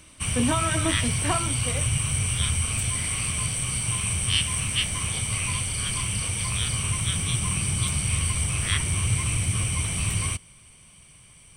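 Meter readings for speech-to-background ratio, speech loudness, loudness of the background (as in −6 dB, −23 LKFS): −4.5 dB, −29.5 LKFS, −25.0 LKFS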